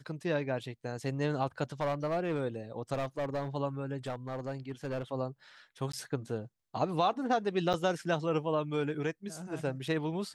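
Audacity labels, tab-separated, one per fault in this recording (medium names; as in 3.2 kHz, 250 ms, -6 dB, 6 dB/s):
1.800000	2.410000	clipped -26.5 dBFS
2.930000	3.480000	clipped -29.5 dBFS
4.060000	5.030000	clipped -31 dBFS
5.920000	5.930000	dropout 14 ms
7.730000	7.740000	dropout 8.1 ms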